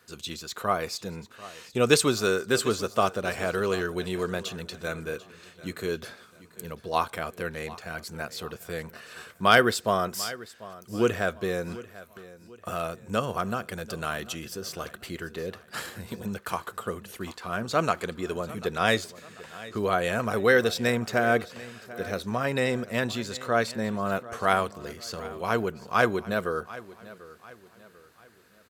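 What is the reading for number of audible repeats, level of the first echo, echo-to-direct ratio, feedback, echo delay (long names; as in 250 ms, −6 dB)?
3, −18.0 dB, −17.5 dB, 40%, 742 ms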